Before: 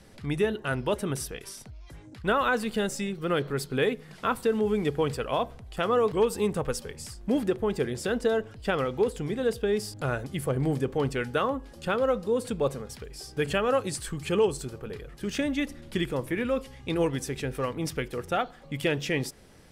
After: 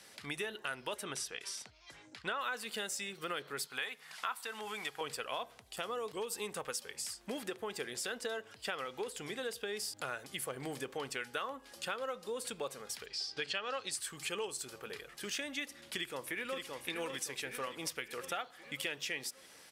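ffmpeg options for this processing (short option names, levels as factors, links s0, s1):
-filter_complex "[0:a]asettb=1/sr,asplit=3[s0][s1][s2];[s0]atrim=end=1.034[s3];[s1]atrim=start=1.03:end=2.41,asetpts=PTS-STARTPTS,afade=t=in:d=0.004:c=qsin,afade=t=out:st=1.376:d=0.004:c=qsin,lowpass=7100[s4];[s2]atrim=start=2.406[s5];[s3][s4]acrossfade=d=0.004:c1=hsin:c2=qsin[s6];[s6][s5]acrossfade=d=0.004:c1=qsin:c2=hsin,asettb=1/sr,asplit=3[s7][s8][s9];[s7]atrim=end=3.674[s10];[s8]atrim=start=3.67:end=5.01,asetpts=PTS-STARTPTS,afade=t=in:d=0.004:c=qsin,afade=t=out:st=1.336:d=0.004:c=qsin,lowshelf=f=610:t=q:w=1.5:g=-8.5[s11];[s9]atrim=start=5.006[s12];[s10][s11]acrossfade=d=0.004:c1=hsin:c2=qsin[s13];[s13][s12]acrossfade=d=0.004:c1=qsin:c2=hsin,asettb=1/sr,asplit=3[s14][s15][s16];[s14]atrim=end=5.624[s17];[s15]atrim=start=5.62:end=6.32,asetpts=PTS-STARTPTS,afade=t=in:d=0.004:c=qsin,afade=t=out:st=0.696:d=0.004:c=qsin,equalizer=f=1600:w=0.59:g=-6.5[s18];[s16]atrim=start=6.316[s19];[s17][s18]acrossfade=d=0.004:c1=hsin:c2=qsin[s20];[s20][s19]acrossfade=d=0.004:c1=qsin:c2=hsin,asettb=1/sr,asplit=3[s21][s22][s23];[s21]atrim=end=13.064[s24];[s22]atrim=start=13.06:end=13.91,asetpts=PTS-STARTPTS,afade=t=in:d=0.004:c=qsin,afade=t=out:st=0.846:d=0.004:c=qsin,lowpass=f=4600:t=q:w=2.6[s25];[s23]atrim=start=13.906[s26];[s24][s25]acrossfade=d=0.004:c1=hsin:c2=qsin[s27];[s27][s26]acrossfade=d=0.004:c1=qsin:c2=hsin,asplit=2[s28][s29];[s29]afade=t=in:st=15.85:d=0.01,afade=t=out:st=16.76:d=0.01,aecho=0:1:570|1140|1710|2280|2850|3420|3990:0.473151|0.260233|0.143128|0.0787205|0.0432963|0.023813|0.0130971[s30];[s28][s30]amix=inputs=2:normalize=0,lowpass=f=2000:p=1,aderivative,acompressor=threshold=0.002:ratio=3,volume=6.31"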